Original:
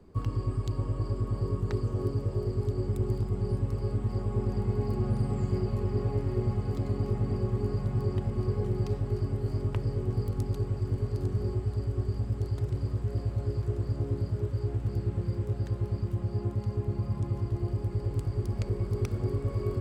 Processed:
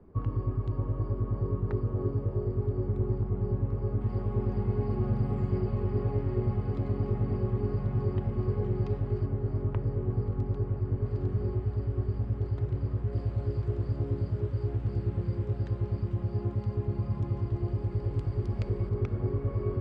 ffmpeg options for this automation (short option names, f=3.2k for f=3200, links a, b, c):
-af "asetnsamples=n=441:p=0,asendcmd='4.01 lowpass f 2700;9.26 lowpass f 1800;11.05 lowpass f 2500;13.13 lowpass f 3700;18.89 lowpass f 2200',lowpass=1.6k"